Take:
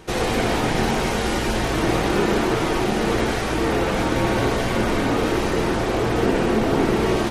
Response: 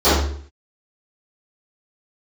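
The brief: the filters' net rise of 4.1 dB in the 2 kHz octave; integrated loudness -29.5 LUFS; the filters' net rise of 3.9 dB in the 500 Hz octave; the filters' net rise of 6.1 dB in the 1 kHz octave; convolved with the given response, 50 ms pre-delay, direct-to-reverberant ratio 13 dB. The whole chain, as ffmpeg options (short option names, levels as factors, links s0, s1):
-filter_complex "[0:a]equalizer=f=500:t=o:g=3.5,equalizer=f=1000:t=o:g=6,equalizer=f=2000:t=o:g=3,asplit=2[s0][s1];[1:a]atrim=start_sample=2205,adelay=50[s2];[s1][s2]afir=irnorm=-1:irlink=0,volume=0.0112[s3];[s0][s3]amix=inputs=2:normalize=0,volume=0.237"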